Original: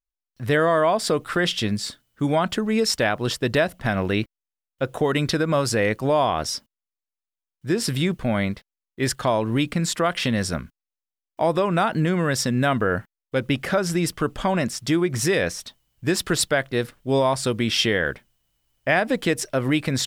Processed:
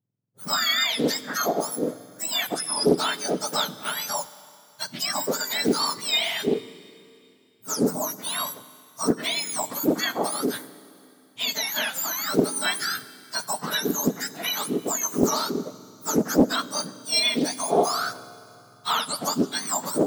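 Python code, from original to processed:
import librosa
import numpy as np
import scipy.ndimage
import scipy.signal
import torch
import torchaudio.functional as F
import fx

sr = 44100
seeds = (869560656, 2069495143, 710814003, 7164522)

y = fx.octave_mirror(x, sr, pivot_hz=1500.0)
y = fx.rev_schroeder(y, sr, rt60_s=2.6, comb_ms=31, drr_db=16.0)
y = fx.doppler_dist(y, sr, depth_ms=0.43)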